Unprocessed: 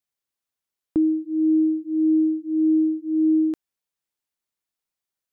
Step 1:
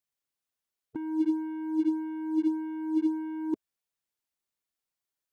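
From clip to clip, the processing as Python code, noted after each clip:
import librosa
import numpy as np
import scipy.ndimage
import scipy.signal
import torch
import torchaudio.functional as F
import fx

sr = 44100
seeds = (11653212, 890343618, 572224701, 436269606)

y = fx.spec_gate(x, sr, threshold_db=-15, keep='strong')
y = fx.leveller(y, sr, passes=2)
y = fx.over_compress(y, sr, threshold_db=-23.0, ratio=-0.5)
y = y * 10.0 ** (-5.0 / 20.0)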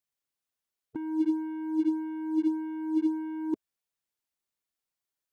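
y = x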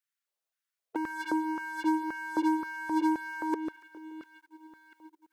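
y = fx.echo_split(x, sr, split_hz=320.0, low_ms=694, high_ms=143, feedback_pct=52, wet_db=-14)
y = fx.leveller(y, sr, passes=2)
y = fx.filter_lfo_highpass(y, sr, shape='square', hz=1.9, low_hz=550.0, high_hz=1500.0, q=2.2)
y = y * 10.0 ** (1.5 / 20.0)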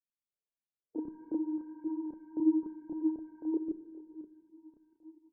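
y = fx.chorus_voices(x, sr, voices=4, hz=1.4, base_ms=30, depth_ms=3.0, mix_pct=55)
y = fx.ladder_lowpass(y, sr, hz=520.0, resonance_pct=20)
y = fx.room_shoebox(y, sr, seeds[0], volume_m3=1500.0, walls='mixed', distance_m=0.38)
y = y * 10.0 ** (6.0 / 20.0)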